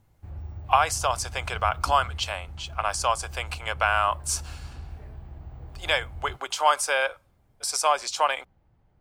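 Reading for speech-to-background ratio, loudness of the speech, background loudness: 14.5 dB, -26.0 LUFS, -40.5 LUFS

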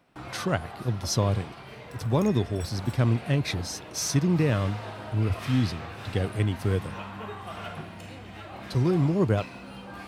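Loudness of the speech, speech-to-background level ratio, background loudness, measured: -27.0 LUFS, 13.5 dB, -40.5 LUFS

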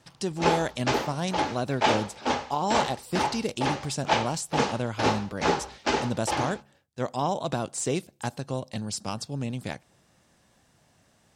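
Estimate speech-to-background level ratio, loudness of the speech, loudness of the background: -2.5 dB, -31.5 LUFS, -29.0 LUFS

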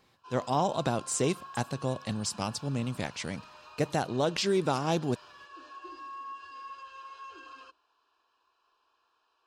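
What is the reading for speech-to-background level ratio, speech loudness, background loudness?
16.5 dB, -31.0 LUFS, -47.5 LUFS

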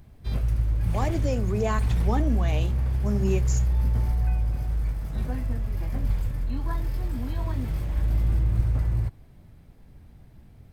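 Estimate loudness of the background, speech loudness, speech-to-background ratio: -27.5 LUFS, -31.0 LUFS, -3.5 dB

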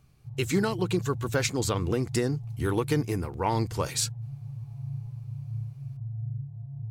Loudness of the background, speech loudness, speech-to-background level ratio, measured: -38.0 LUFS, -29.0 LUFS, 9.0 dB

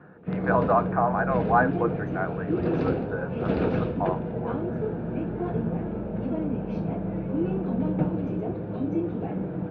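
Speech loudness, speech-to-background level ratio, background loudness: -28.0 LUFS, 0.5 dB, -28.5 LUFS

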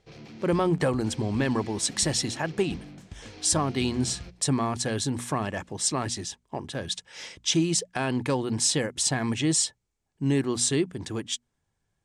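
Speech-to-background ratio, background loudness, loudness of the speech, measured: 17.0 dB, -44.0 LUFS, -27.0 LUFS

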